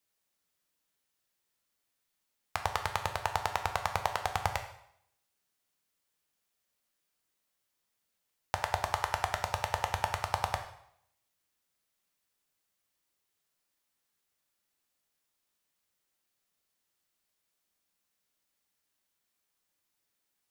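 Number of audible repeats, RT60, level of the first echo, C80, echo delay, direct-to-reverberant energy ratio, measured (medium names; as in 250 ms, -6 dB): no echo, 0.70 s, no echo, 12.0 dB, no echo, 5.0 dB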